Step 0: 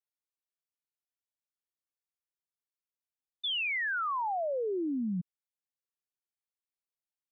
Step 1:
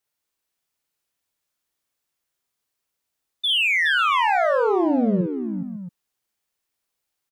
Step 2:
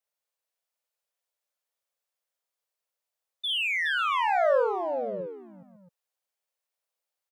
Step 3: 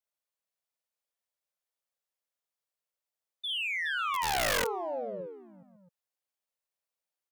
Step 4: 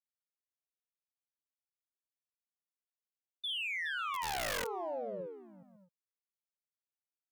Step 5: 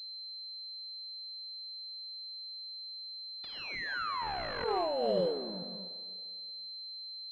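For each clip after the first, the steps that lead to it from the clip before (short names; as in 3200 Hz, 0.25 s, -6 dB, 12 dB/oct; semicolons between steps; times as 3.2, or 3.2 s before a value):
in parallel at -6 dB: soft clip -40 dBFS, distortion -11 dB; on the sum: tapped delay 50/418/552/676 ms -4/-7/-14.5/-12 dB; gain +9 dB
resonant low shelf 390 Hz -10.5 dB, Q 3; gain -8 dB
wrapped overs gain 18.5 dB; gain -5 dB
gate with hold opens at -53 dBFS; compressor, threshold -32 dBFS, peak gain reduction 6 dB; gain -2 dB
Schroeder reverb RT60 2.1 s, combs from 33 ms, DRR 14 dB; negative-ratio compressor -40 dBFS, ratio -0.5; pulse-width modulation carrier 4100 Hz; gain +8.5 dB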